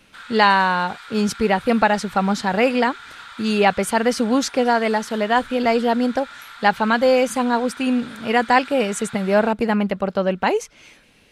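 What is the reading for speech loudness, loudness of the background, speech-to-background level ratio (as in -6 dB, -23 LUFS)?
-19.5 LUFS, -38.5 LUFS, 19.0 dB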